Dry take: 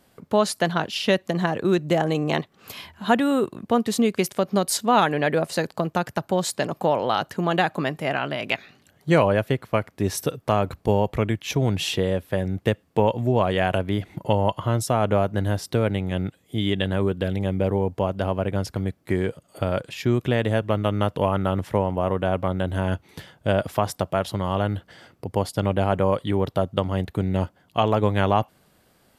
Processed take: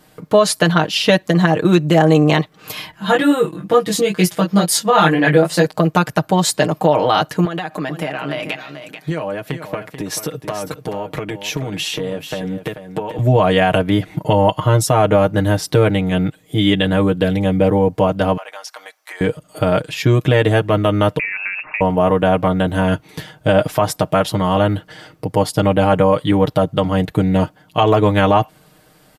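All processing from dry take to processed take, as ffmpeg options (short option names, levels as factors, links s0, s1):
-filter_complex "[0:a]asettb=1/sr,asplit=3[s0][s1][s2];[s0]atrim=end=2.914[s3];[s1]atrim=start=2.91:end=5.66,asetpts=PTS-STARTPTS,afade=t=in:d=0.004:c=qsin,afade=t=out:st=2.746:d=0.004:c=qsin,aecho=1:1:5.9:0.73,atrim=end_sample=121275,flanger=delay=16.5:depth=4.7:speed=2.2[s4];[s2]atrim=start=5.656[s5];[s3][s4]acrossfade=d=0.004:c1=hsin:c2=qsin[s6];[s6][s5]acrossfade=d=0.004:c1=qsin:c2=hsin,asettb=1/sr,asplit=3[s7][s8][s9];[s7]atrim=end=7.454[s10];[s8]atrim=start=7.45:end=13.19,asetpts=PTS-STARTPTS,afade=t=in:d=0.004:c=qsin,afade=t=out:st=5.736:d=0.004:c=qsin,highpass=150,acompressor=threshold=0.0398:ratio=12:attack=3.2:release=140:knee=1:detection=peak,aecho=1:1:437:0.316,atrim=end_sample=253134[s11];[s9]atrim=start=13.186[s12];[s10][s11]acrossfade=d=0.004:c1=hsin:c2=qsin[s13];[s13][s12]acrossfade=d=0.004:c1=qsin:c2=hsin,asettb=1/sr,asplit=3[s14][s15][s16];[s14]atrim=end=18.374[s17];[s15]atrim=start=18.37:end=19.21,asetpts=PTS-STARTPTS,afade=t=in:d=0.004:c=qsin,afade=t=out:st=0.836:d=0.004:c=qsin,highpass=f=760:w=0.5412,highpass=f=760:w=1.3066,equalizer=f=5800:t=o:w=0.25:g=7,acompressor=threshold=0.0112:ratio=3:attack=3.2:release=140:knee=1:detection=peak[s18];[s16]atrim=start=19.206[s19];[s17][s18]acrossfade=d=0.004:c1=hsin:c2=qsin[s20];[s20][s19]acrossfade=d=0.004:c1=qsin:c2=hsin,asettb=1/sr,asplit=3[s21][s22][s23];[s21]atrim=end=21.194[s24];[s22]atrim=start=21.19:end=21.81,asetpts=PTS-STARTPTS,afade=t=in:d=0.004:c=qsin,afade=t=out:st=0.616:d=0.004:c=qsin,highpass=f=190:w=0.5412,highpass=f=190:w=1.3066,acompressor=threshold=0.0355:ratio=4:attack=3.2:release=140:knee=1:detection=peak,lowpass=f=2500:t=q:w=0.5098,lowpass=f=2500:t=q:w=0.6013,lowpass=f=2500:t=q:w=0.9,lowpass=f=2500:t=q:w=2.563,afreqshift=-2900[s25];[s23]atrim=start=21.806[s26];[s24][s25]acrossfade=d=0.004:c1=hsin:c2=qsin[s27];[s27][s26]acrossfade=d=0.004:c1=qsin:c2=hsin,aecho=1:1:6.5:0.76,alimiter=level_in=2.66:limit=0.891:release=50:level=0:latency=1,volume=0.891"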